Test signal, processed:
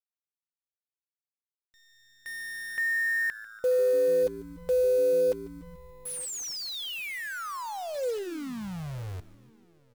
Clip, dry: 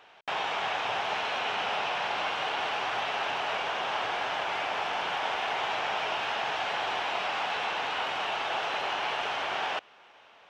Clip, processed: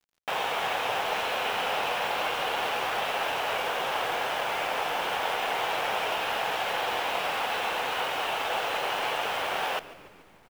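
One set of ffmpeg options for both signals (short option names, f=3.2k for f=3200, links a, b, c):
-filter_complex "[0:a]equalizer=f=500:t=o:w=0.27:g=7.5,aeval=exprs='sgn(val(0))*max(abs(val(0))-0.00355,0)':c=same,asplit=2[a][b];[b]adelay=932.9,volume=-23dB,highshelf=f=4k:g=-21[c];[a][c]amix=inputs=2:normalize=0,acrusher=bits=8:dc=4:mix=0:aa=0.000001,asplit=2[d][e];[e]asplit=6[f][g][h][i][j][k];[f]adelay=145,afreqshift=-110,volume=-17.5dB[l];[g]adelay=290,afreqshift=-220,volume=-21.9dB[m];[h]adelay=435,afreqshift=-330,volume=-26.4dB[n];[i]adelay=580,afreqshift=-440,volume=-30.8dB[o];[j]adelay=725,afreqshift=-550,volume=-35.2dB[p];[k]adelay=870,afreqshift=-660,volume=-39.7dB[q];[l][m][n][o][p][q]amix=inputs=6:normalize=0[r];[d][r]amix=inputs=2:normalize=0,volume=2dB"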